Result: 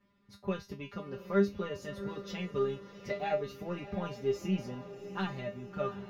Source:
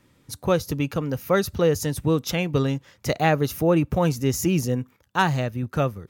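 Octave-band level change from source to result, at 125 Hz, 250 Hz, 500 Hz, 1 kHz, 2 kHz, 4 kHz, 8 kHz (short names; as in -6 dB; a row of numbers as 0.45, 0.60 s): -16.5 dB, -12.0 dB, -10.5 dB, -14.0 dB, -14.0 dB, -14.5 dB, under -20 dB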